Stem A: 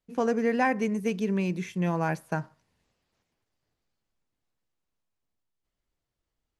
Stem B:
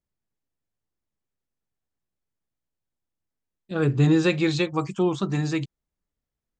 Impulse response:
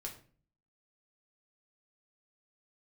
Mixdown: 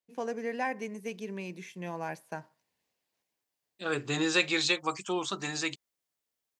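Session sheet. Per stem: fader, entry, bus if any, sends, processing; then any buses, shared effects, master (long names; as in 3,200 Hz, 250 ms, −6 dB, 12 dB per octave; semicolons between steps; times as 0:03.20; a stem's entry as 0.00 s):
−5.0 dB, 0.00 s, no send, parametric band 1,300 Hz −8.5 dB 0.32 octaves
−1.5 dB, 0.10 s, no send, spectral tilt +2.5 dB per octave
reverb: not used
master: high-pass filter 480 Hz 6 dB per octave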